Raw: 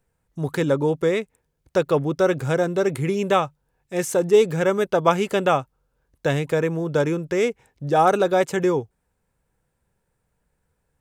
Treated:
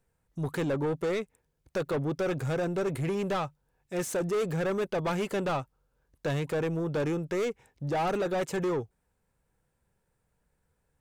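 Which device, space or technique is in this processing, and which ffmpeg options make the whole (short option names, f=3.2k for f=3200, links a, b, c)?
saturation between pre-emphasis and de-emphasis: -af "highshelf=f=2.7k:g=9,asoftclip=type=tanh:threshold=-22dB,highshelf=f=2.7k:g=-9,volume=-3dB"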